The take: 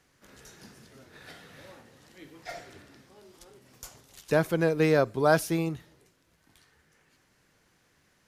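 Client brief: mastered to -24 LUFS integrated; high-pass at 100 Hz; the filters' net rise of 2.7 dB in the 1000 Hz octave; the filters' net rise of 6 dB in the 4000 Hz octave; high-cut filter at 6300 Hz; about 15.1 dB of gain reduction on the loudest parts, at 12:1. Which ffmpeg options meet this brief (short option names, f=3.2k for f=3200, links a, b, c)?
-af "highpass=100,lowpass=6.3k,equalizer=f=1k:t=o:g=3.5,equalizer=f=4k:t=o:g=8,acompressor=threshold=-31dB:ratio=12,volume=16.5dB"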